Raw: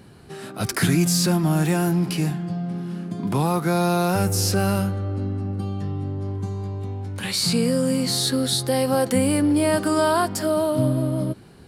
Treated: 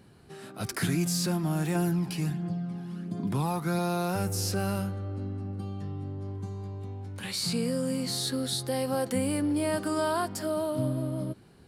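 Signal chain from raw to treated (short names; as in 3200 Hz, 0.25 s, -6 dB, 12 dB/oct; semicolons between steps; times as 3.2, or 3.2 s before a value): 1.75–3.79 phaser 1.4 Hz, delay 1.3 ms, feedback 40%; gain -8.5 dB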